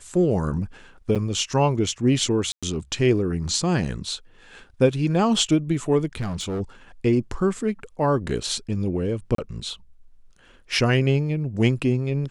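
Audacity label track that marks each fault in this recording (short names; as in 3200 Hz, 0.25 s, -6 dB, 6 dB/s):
1.150000	1.160000	gap 7.5 ms
2.520000	2.630000	gap 0.106 s
6.200000	6.610000	clipped -24 dBFS
9.350000	9.380000	gap 33 ms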